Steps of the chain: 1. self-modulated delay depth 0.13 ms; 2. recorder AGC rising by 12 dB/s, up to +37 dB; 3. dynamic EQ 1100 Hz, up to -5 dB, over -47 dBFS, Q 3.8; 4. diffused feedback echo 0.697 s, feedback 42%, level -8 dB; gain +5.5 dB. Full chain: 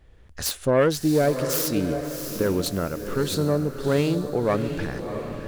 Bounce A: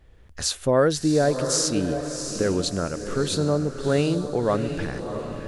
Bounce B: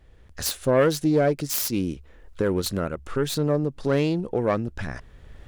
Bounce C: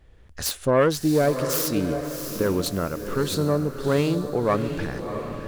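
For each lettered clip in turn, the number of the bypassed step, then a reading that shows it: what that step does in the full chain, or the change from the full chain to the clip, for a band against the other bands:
1, 8 kHz band +4.5 dB; 4, echo-to-direct -7.0 dB to none; 3, 1 kHz band +2.0 dB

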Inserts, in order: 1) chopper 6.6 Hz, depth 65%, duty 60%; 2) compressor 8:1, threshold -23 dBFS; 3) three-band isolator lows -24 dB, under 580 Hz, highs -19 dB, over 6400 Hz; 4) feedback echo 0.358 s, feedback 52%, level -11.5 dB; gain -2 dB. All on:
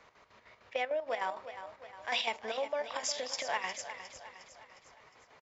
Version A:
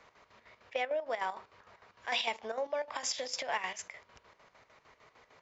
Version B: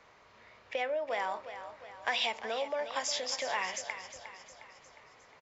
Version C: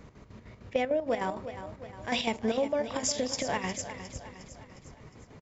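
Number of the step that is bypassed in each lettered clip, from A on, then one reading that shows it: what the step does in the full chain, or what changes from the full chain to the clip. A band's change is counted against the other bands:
4, echo-to-direct -10.0 dB to none; 1, loudness change +1.5 LU; 3, momentary loudness spread change +5 LU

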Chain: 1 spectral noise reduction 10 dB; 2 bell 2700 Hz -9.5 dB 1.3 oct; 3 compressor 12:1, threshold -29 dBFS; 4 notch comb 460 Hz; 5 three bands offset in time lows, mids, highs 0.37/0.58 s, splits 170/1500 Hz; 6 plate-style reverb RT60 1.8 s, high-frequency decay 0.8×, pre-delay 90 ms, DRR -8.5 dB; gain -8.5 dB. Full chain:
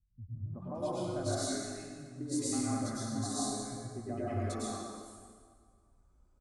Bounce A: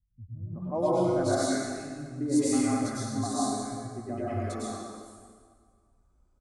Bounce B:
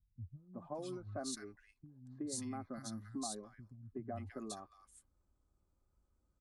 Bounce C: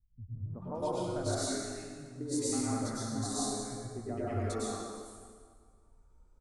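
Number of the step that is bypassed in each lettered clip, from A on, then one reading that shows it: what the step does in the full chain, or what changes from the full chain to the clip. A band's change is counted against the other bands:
3, mean gain reduction 4.0 dB; 6, echo-to-direct 32.0 dB to 23.0 dB; 4, momentary loudness spread change +1 LU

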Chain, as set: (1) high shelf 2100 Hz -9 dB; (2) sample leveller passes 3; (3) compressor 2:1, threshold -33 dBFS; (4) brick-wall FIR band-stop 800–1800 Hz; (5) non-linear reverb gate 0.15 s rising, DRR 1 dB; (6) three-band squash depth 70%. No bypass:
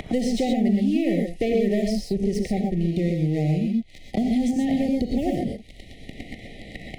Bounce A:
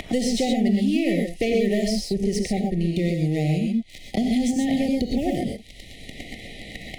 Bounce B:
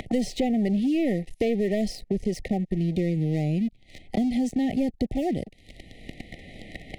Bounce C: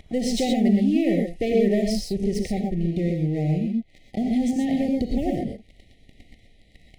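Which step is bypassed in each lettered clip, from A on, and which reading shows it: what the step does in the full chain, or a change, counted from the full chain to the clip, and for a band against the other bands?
1, 8 kHz band +6.5 dB; 5, loudness change -3.0 LU; 6, crest factor change +2.5 dB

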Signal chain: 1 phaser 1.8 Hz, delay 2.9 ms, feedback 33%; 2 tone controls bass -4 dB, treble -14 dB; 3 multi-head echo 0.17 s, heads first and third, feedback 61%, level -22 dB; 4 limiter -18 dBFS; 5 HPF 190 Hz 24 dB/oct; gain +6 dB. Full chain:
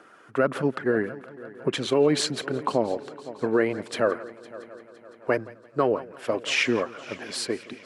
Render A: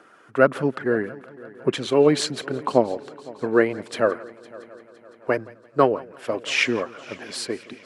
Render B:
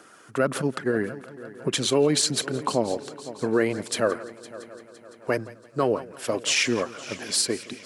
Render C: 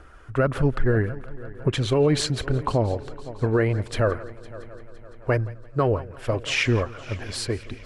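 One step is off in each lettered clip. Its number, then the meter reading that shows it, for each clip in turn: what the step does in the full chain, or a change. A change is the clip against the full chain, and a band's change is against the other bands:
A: 4, crest factor change +4.0 dB; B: 2, 8 kHz band +9.5 dB; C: 5, 125 Hz band +13.5 dB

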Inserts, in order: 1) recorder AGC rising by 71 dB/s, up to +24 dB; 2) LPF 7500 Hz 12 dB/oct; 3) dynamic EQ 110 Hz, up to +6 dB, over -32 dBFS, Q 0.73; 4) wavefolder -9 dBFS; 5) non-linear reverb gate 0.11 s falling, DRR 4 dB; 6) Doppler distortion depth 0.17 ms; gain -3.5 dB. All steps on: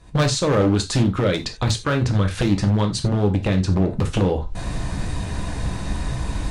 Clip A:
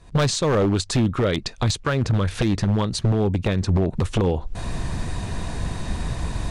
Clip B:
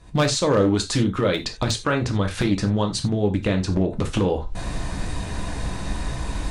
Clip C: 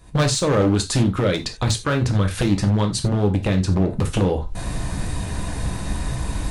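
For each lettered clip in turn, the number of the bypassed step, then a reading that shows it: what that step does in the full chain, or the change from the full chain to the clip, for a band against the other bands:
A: 5, crest factor change -5.0 dB; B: 3, loudness change -2.0 LU; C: 2, 8 kHz band +3.0 dB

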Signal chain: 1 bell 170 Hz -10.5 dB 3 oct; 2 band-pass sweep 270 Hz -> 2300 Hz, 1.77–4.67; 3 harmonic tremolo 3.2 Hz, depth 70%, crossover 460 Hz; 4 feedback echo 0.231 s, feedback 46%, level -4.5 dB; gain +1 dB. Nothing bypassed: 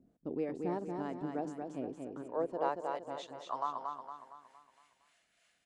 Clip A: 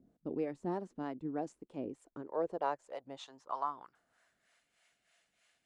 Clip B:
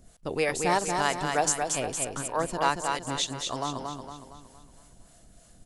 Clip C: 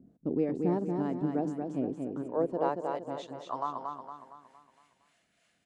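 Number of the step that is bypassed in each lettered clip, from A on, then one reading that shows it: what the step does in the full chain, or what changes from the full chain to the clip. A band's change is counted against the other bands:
4, echo-to-direct -3.5 dB to none; 2, 8 kHz band +22.5 dB; 1, 125 Hz band +8.0 dB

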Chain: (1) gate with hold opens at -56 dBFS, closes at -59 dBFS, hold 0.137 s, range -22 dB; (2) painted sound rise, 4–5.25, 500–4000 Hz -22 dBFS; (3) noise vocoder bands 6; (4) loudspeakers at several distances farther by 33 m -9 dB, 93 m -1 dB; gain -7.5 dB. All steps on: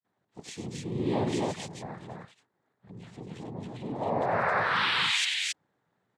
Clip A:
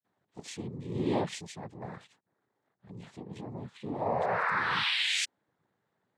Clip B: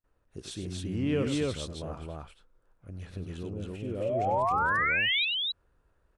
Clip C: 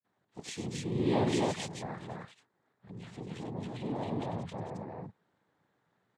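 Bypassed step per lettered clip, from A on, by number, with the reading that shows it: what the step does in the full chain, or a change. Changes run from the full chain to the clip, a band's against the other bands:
4, loudness change -2.5 LU; 3, 8 kHz band -7.5 dB; 2, 2 kHz band -11.5 dB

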